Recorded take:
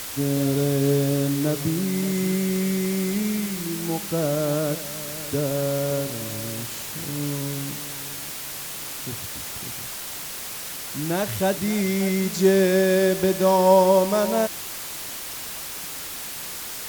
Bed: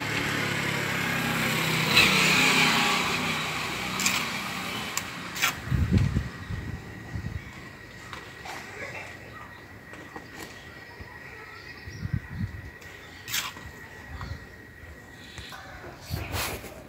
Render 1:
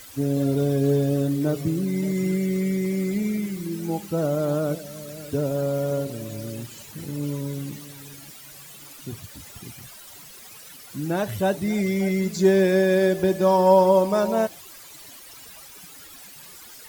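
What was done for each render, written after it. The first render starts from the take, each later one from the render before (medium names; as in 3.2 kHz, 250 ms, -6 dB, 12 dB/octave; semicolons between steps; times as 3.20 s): noise reduction 14 dB, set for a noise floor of -34 dBFS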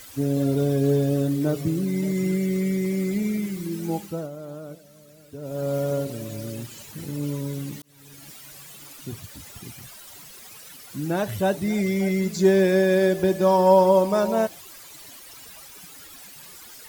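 3.96–5.74 s: dip -13.5 dB, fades 0.34 s; 7.82–8.31 s: fade in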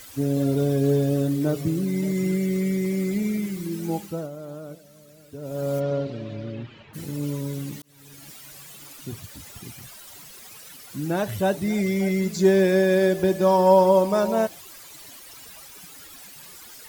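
5.79–6.93 s: low-pass 5 kHz -> 2.8 kHz 24 dB/octave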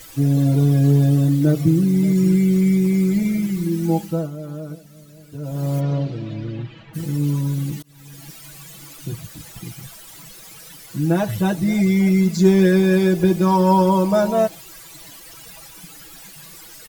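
bass shelf 190 Hz +8 dB; comb 6.1 ms, depth 94%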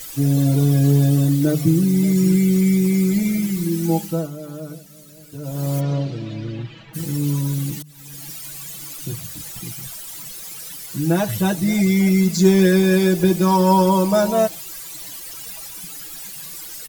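treble shelf 3.8 kHz +8.5 dB; hum notches 50/100/150 Hz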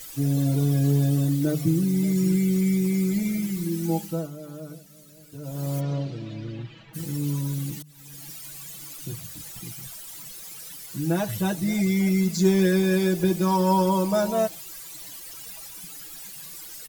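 trim -6 dB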